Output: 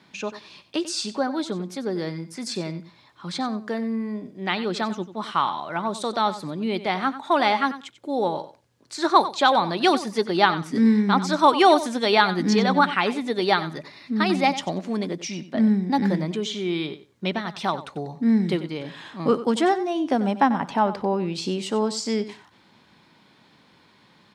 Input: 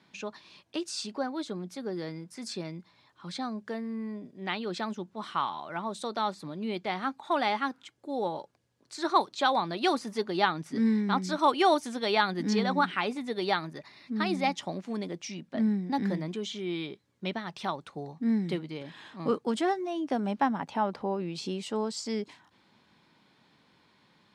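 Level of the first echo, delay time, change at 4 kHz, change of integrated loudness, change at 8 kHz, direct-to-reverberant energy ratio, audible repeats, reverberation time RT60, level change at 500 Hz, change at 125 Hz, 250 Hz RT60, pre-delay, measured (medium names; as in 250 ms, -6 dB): -14.0 dB, 93 ms, +7.5 dB, +7.5 dB, +7.5 dB, no reverb, 2, no reverb, +7.5 dB, +7.5 dB, no reverb, no reverb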